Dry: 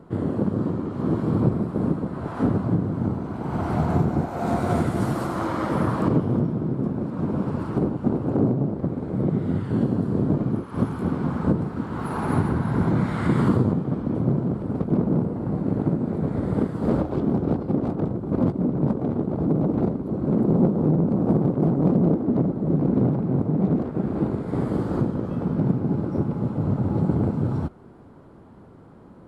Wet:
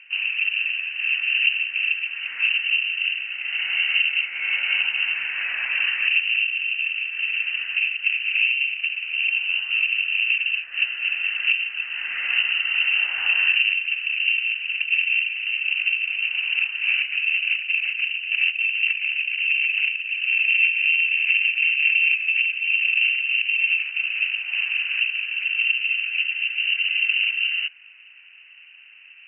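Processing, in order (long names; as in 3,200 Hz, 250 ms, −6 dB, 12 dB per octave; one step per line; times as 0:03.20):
high-frequency loss of the air 310 metres
voice inversion scrambler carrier 2,900 Hz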